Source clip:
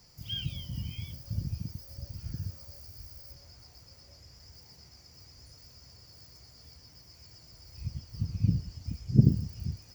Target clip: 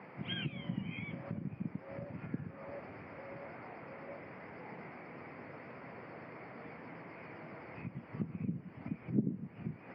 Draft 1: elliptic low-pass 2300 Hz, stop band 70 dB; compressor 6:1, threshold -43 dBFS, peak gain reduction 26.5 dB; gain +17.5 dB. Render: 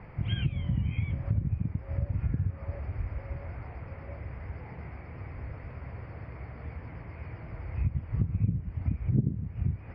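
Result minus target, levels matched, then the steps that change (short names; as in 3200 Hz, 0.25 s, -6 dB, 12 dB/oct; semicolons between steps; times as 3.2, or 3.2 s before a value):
250 Hz band -6.5 dB
add after compressor: HPF 190 Hz 24 dB/oct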